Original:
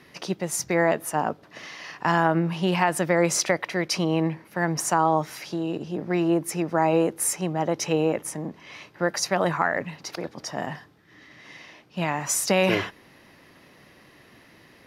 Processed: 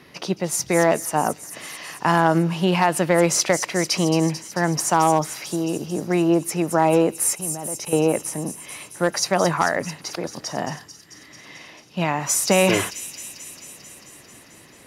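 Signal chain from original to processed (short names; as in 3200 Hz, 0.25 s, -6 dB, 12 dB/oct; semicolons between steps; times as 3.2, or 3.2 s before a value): 7.35–7.93 level quantiser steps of 18 dB; thin delay 0.221 s, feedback 74%, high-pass 5500 Hz, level -6 dB; one-sided clip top -13.5 dBFS, bottom -9.5 dBFS; bell 1800 Hz -3 dB 0.38 oct; gain +4 dB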